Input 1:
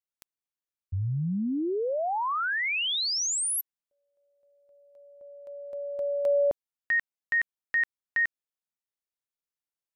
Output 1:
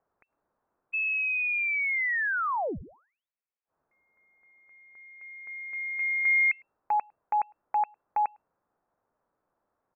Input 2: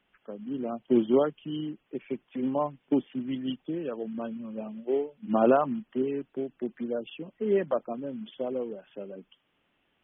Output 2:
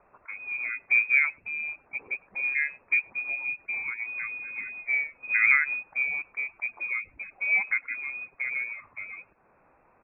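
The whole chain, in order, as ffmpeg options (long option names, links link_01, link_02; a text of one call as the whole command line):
ffmpeg -i in.wav -filter_complex "[0:a]acrossover=split=140|1600[link_01][link_02][link_03];[link_03]acompressor=mode=upward:threshold=-38dB:ratio=2.5:attack=0.95:release=63:knee=2.83:detection=peak[link_04];[link_01][link_02][link_04]amix=inputs=3:normalize=0,asplit=2[link_05][link_06];[link_06]adelay=105,volume=-30dB,highshelf=frequency=4000:gain=-2.36[link_07];[link_05][link_07]amix=inputs=2:normalize=0,lowpass=frequency=2300:width_type=q:width=0.5098,lowpass=frequency=2300:width_type=q:width=0.6013,lowpass=frequency=2300:width_type=q:width=0.9,lowpass=frequency=2300:width_type=q:width=2.563,afreqshift=-2700" out.wav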